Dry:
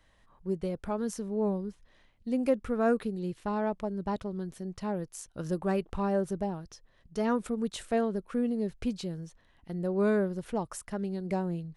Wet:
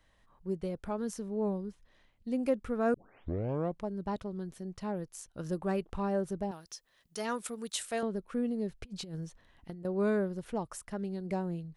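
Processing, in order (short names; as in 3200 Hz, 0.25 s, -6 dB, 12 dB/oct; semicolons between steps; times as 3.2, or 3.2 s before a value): 2.94 tape start 0.91 s; 6.51–8.03 tilt +3.5 dB/oct; 8.84–9.85 negative-ratio compressor -38 dBFS, ratio -0.5; gain -3 dB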